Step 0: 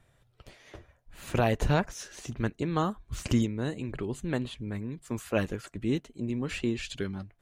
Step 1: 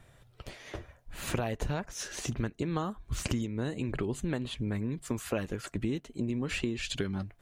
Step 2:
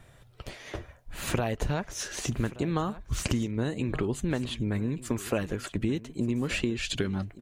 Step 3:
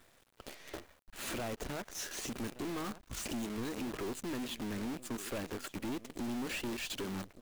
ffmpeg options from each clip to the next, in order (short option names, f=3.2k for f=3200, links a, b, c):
-af "acompressor=threshold=-35dB:ratio=10,volume=6.5dB"
-af "aecho=1:1:1177:0.133,volume=3.5dB"
-af "lowshelf=f=180:t=q:w=1.5:g=-9.5,acrusher=bits=7:dc=4:mix=0:aa=0.000001,aeval=exprs='(tanh(39.8*val(0)+0.25)-tanh(0.25))/39.8':c=same,volume=-3dB"